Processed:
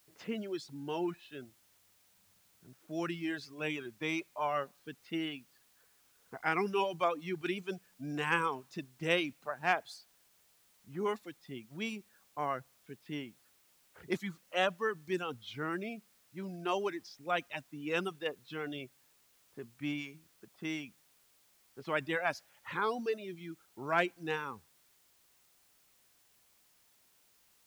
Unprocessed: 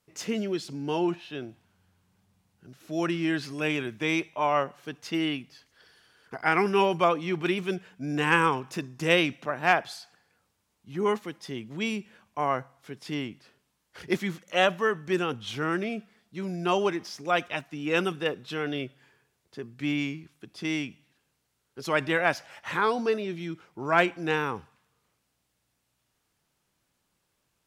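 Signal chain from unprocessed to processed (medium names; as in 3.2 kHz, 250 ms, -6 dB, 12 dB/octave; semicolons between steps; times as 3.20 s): reverb removal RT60 1.3 s; level-controlled noise filter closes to 1.2 kHz, open at -26 dBFS; added noise white -61 dBFS; trim -7.5 dB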